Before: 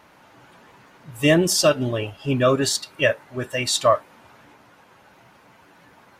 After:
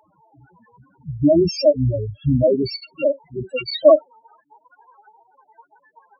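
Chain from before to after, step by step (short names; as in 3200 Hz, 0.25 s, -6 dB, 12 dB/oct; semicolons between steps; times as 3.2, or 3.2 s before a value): loudest bins only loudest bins 2; high-pass sweep 130 Hz -> 880 Hz, 3.29–4.18; harmoniser -12 st -15 dB; gain +5.5 dB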